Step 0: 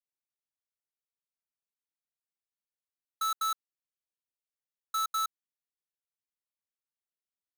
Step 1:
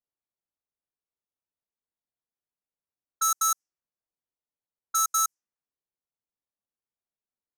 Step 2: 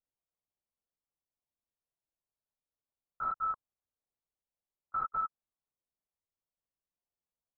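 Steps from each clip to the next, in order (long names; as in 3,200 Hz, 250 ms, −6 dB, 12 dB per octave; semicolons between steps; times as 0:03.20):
low-pass that shuts in the quiet parts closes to 1,000 Hz, open at −32 dBFS; high shelf with overshoot 4,700 Hz +7.5 dB, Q 3; level +4 dB
low-pass filter 1,200 Hz 24 dB per octave; linear-prediction vocoder at 8 kHz whisper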